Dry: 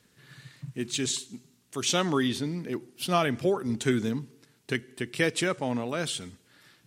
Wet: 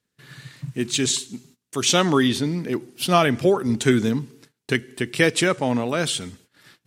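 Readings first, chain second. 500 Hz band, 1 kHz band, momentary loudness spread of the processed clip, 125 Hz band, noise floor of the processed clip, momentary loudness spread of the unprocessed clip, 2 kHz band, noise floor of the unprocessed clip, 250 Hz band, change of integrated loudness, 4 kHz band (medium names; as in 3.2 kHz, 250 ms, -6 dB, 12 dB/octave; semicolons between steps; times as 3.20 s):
+7.5 dB, +7.5 dB, 14 LU, +7.5 dB, -79 dBFS, 14 LU, +7.5 dB, -65 dBFS, +7.5 dB, +7.5 dB, +7.5 dB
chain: gate -57 dBFS, range -22 dB; trim +7.5 dB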